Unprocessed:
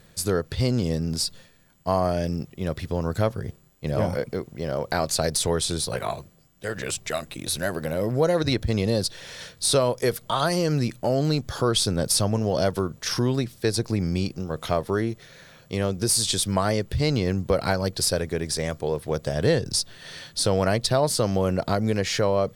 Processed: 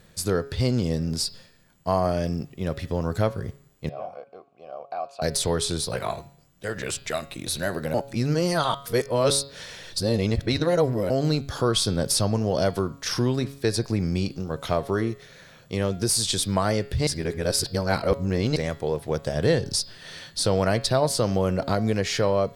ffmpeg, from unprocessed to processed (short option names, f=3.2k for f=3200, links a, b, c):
-filter_complex "[0:a]asettb=1/sr,asplit=3[a][b][c];[a]atrim=end=3.894[d];[b]atrim=start=3.89:end=5.22,asetpts=PTS-STARTPTS,afade=t=in:d=0.004:c=qsin,afade=t=out:st=1.326:d=0.004:c=qsin,asplit=3[e][f][g];[e]bandpass=f=730:t=q:w=8,volume=0dB[h];[f]bandpass=f=1.09k:t=q:w=8,volume=-6dB[i];[g]bandpass=f=2.44k:t=q:w=8,volume=-9dB[j];[h][i][j]amix=inputs=3:normalize=0[k];[c]atrim=start=5.216[l];[d][k]acrossfade=d=0.004:c1=hsin:c2=qsin[m];[m][l]acrossfade=d=0.004:c1=qsin:c2=hsin,asplit=5[n][o][p][q][r];[n]atrim=end=7.942[s];[o]atrim=start=7.938:end=11.102,asetpts=PTS-STARTPTS,areverse[t];[p]atrim=start=11.098:end=17.072[u];[q]atrim=start=17.068:end=18.562,asetpts=PTS-STARTPTS,areverse[v];[r]atrim=start=18.558[w];[s][t]acrossfade=d=0.004:c1=hsin:c2=hsin[x];[x][u]acrossfade=d=0.004:c1=hsin:c2=hsin[y];[y][v]acrossfade=d=0.004:c1=hsin:c2=hsin[z];[z][w]acrossfade=d=0.004:c1=hsin:c2=hsin,highshelf=f=10k:g=-4,bandreject=f=138.8:t=h:w=4,bandreject=f=277.6:t=h:w=4,bandreject=f=416.4:t=h:w=4,bandreject=f=555.2:t=h:w=4,bandreject=f=694:t=h:w=4,bandreject=f=832.8:t=h:w=4,bandreject=f=971.6:t=h:w=4,bandreject=f=1.1104k:t=h:w=4,bandreject=f=1.2492k:t=h:w=4,bandreject=f=1.388k:t=h:w=4,bandreject=f=1.5268k:t=h:w=4,bandreject=f=1.6656k:t=h:w=4,bandreject=f=1.8044k:t=h:w=4,bandreject=f=1.9432k:t=h:w=4,bandreject=f=2.082k:t=h:w=4,bandreject=f=2.2208k:t=h:w=4,bandreject=f=2.3596k:t=h:w=4,bandreject=f=2.4984k:t=h:w=4,bandreject=f=2.6372k:t=h:w=4,bandreject=f=2.776k:t=h:w=4,bandreject=f=2.9148k:t=h:w=4,bandreject=f=3.0536k:t=h:w=4,bandreject=f=3.1924k:t=h:w=4,bandreject=f=3.3312k:t=h:w=4,bandreject=f=3.47k:t=h:w=4,bandreject=f=3.6088k:t=h:w=4,bandreject=f=3.7476k:t=h:w=4,bandreject=f=3.8864k:t=h:w=4,bandreject=f=4.0252k:t=h:w=4,bandreject=f=4.164k:t=h:w=4,bandreject=f=4.3028k:t=h:w=4,bandreject=f=4.4416k:t=h:w=4,bandreject=f=4.5804k:t=h:w=4,bandreject=f=4.7192k:t=h:w=4,bandreject=f=4.858k:t=h:w=4,bandreject=f=4.9968k:t=h:w=4,bandreject=f=5.1356k:t=h:w=4"